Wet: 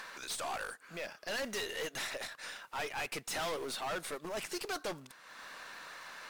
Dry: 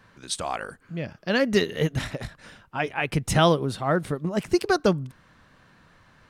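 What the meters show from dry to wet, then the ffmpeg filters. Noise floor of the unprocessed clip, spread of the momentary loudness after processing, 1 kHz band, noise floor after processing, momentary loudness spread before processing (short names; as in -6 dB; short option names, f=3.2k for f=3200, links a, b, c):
-58 dBFS, 10 LU, -12.0 dB, -60 dBFS, 14 LU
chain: -af "highpass=580,highshelf=f=3.4k:g=10,acompressor=mode=upward:threshold=-38dB:ratio=2.5,bandreject=f=3.1k:w=18,aeval=exprs='(tanh(56.2*val(0)+0.2)-tanh(0.2))/56.2':c=same,acrusher=bits=3:mode=log:mix=0:aa=0.000001,highshelf=f=7.6k:g=-6.5,volume=1dB" -ar 48000 -c:a libmp3lame -b:a 96k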